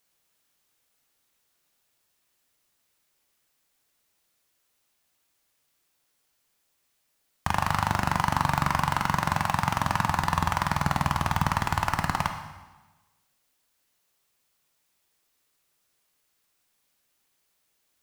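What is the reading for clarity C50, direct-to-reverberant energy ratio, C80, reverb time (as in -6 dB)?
7.5 dB, 5.5 dB, 9.5 dB, 1.2 s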